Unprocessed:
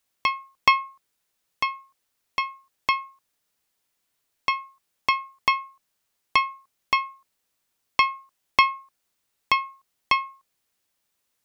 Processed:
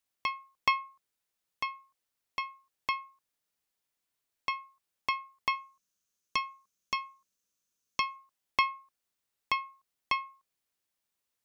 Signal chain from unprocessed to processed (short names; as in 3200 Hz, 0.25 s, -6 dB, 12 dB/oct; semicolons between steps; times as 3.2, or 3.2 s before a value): 5.55–8.16 thirty-one-band EQ 200 Hz +6 dB, 800 Hz -12 dB, 2000 Hz -5 dB, 6300 Hz +11 dB; gain -9 dB